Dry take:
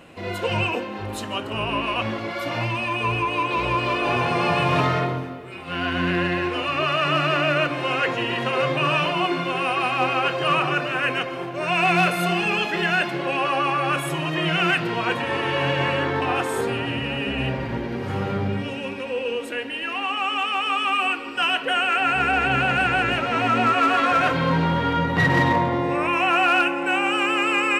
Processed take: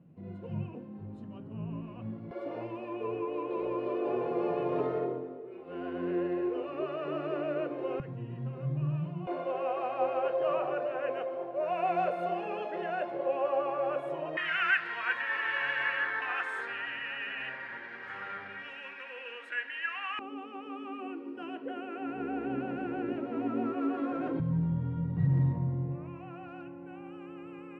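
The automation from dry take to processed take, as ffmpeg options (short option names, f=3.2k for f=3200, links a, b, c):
-af "asetnsamples=n=441:p=0,asendcmd='2.31 bandpass f 420;8 bandpass f 140;9.27 bandpass f 570;14.37 bandpass f 1700;20.19 bandpass f 320;24.4 bandpass f 130',bandpass=f=160:t=q:w=3.7:csg=0"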